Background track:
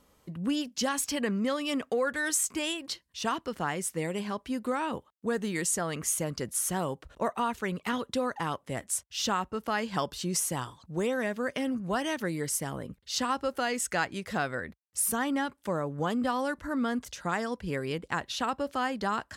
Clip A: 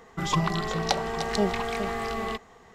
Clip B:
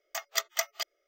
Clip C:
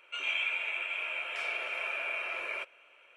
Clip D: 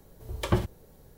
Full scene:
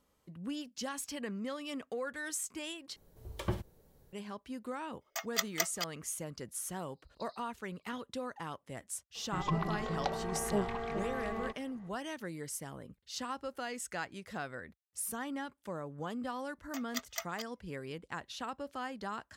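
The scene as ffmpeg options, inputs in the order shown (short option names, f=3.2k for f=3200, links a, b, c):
-filter_complex "[4:a]asplit=2[a][b];[2:a]asplit=2[c][d];[0:a]volume=-10dB[e];[b]asuperpass=centerf=4400:order=12:qfactor=3.5[f];[1:a]lowpass=f=1.5k:p=1[g];[e]asplit=2[h][i];[h]atrim=end=2.964[j];[a]atrim=end=1.17,asetpts=PTS-STARTPTS,volume=-9.5dB[k];[i]atrim=start=4.126[l];[c]atrim=end=1.07,asetpts=PTS-STARTPTS,volume=-3dB,afade=t=in:d=0.004:c=hsin,afade=t=out:st=1.066:d=0.004:c=hsin,adelay=220941S[m];[f]atrim=end=1.17,asetpts=PTS-STARTPTS,volume=-7dB,afade=t=in:d=0.004:c=hsin,afade=t=out:st=1.166:d=0.004:c=hsin,adelay=6770[n];[g]atrim=end=2.74,asetpts=PTS-STARTPTS,volume=-7dB,afade=t=in:d=0.004:c=hsin,afade=t=out:st=2.736:d=0.004:c=hsin,adelay=9150[o];[d]atrim=end=1.07,asetpts=PTS-STARTPTS,volume=-10dB,afade=t=in:d=0.004:c=hsin,afade=t=out:st=1.066:d=0.004:c=hsin,adelay=16590[p];[j][k]acrossfade=d=0.004:c1=hsin:c2=hsin[q];[q][l]acrossfade=d=0.004:c1=hsin:c2=hsin[r];[r][m][n][o][p]amix=inputs=5:normalize=0"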